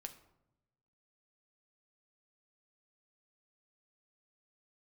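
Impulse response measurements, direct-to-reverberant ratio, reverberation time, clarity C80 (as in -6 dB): 5.5 dB, 0.90 s, 15.5 dB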